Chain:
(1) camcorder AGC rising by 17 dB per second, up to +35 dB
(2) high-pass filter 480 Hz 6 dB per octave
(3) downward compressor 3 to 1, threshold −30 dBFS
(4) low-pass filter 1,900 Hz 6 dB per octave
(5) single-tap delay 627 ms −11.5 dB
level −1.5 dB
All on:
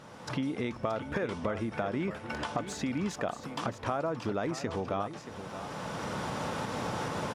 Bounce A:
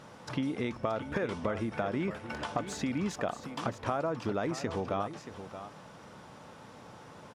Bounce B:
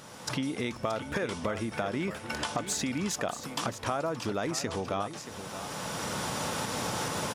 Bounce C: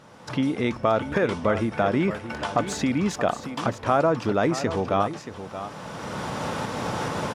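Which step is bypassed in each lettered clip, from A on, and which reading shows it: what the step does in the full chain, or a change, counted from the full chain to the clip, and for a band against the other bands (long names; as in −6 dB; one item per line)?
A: 1, change in crest factor +1.5 dB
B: 4, 8 kHz band +10.5 dB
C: 3, average gain reduction 6.5 dB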